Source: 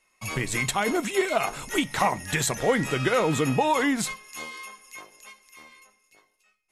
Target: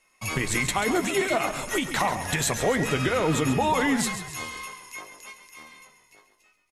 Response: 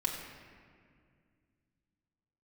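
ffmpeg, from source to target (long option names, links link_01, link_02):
-filter_complex "[0:a]asplit=2[link_01][link_02];[link_02]adelay=12,volume=-12dB[link_03];[link_01][link_03]amix=inputs=2:normalize=0,alimiter=limit=-17dB:level=0:latency=1:release=117,asplit=6[link_04][link_05][link_06][link_07][link_08][link_09];[link_05]adelay=136,afreqshift=-41,volume=-10dB[link_10];[link_06]adelay=272,afreqshift=-82,volume=-16.2dB[link_11];[link_07]adelay=408,afreqshift=-123,volume=-22.4dB[link_12];[link_08]adelay=544,afreqshift=-164,volume=-28.6dB[link_13];[link_09]adelay=680,afreqshift=-205,volume=-34.8dB[link_14];[link_04][link_10][link_11][link_12][link_13][link_14]amix=inputs=6:normalize=0,volume=2.5dB"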